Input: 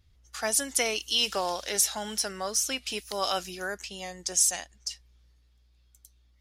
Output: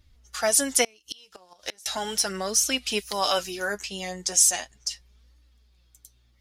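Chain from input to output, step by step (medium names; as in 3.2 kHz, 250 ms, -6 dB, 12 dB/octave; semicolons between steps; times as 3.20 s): flange 0.37 Hz, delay 3.2 ms, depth 8.2 ms, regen +32%; 0.84–1.86 s: inverted gate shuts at -23 dBFS, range -31 dB; trim +8.5 dB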